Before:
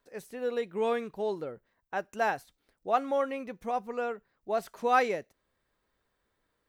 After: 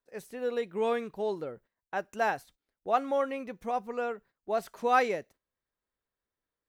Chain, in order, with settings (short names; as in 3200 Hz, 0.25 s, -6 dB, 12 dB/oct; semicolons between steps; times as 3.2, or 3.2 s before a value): gate -55 dBFS, range -14 dB